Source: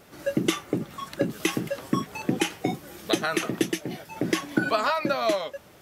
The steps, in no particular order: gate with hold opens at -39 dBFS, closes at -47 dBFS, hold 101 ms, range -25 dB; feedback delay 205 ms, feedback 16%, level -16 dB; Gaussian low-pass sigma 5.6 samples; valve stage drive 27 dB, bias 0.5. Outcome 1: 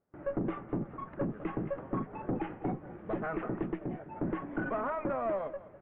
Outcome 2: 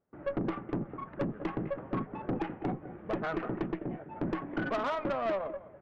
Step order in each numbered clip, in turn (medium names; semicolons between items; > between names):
valve stage > feedback delay > gate with hold > Gaussian low-pass; feedback delay > gate with hold > Gaussian low-pass > valve stage